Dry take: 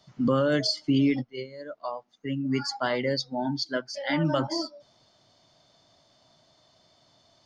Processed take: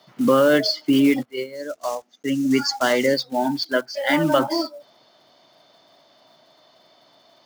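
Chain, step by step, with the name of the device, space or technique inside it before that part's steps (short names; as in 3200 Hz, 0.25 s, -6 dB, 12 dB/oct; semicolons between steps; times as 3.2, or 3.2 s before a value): early digital voice recorder (BPF 270–3900 Hz; block floating point 5-bit); 1.55–3.14 fifteen-band EQ 100 Hz +4 dB, 250 Hz +3 dB, 1000 Hz -5 dB, 6300 Hz +11 dB; gain +9 dB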